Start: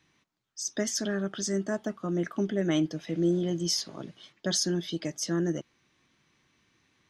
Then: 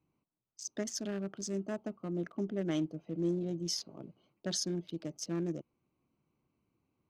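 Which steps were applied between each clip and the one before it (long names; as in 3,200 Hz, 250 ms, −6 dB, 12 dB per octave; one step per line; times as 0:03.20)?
adaptive Wiener filter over 25 samples
level −6.5 dB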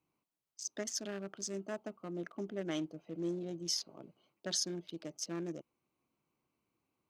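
low-shelf EQ 310 Hz −11.5 dB
level +1 dB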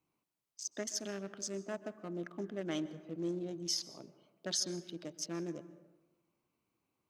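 dense smooth reverb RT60 1.2 s, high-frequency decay 0.4×, pre-delay 115 ms, DRR 15 dB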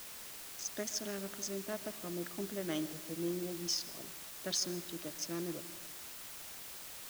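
bit-depth reduction 8 bits, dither triangular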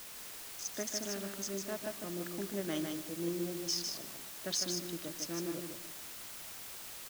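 single-tap delay 153 ms −5 dB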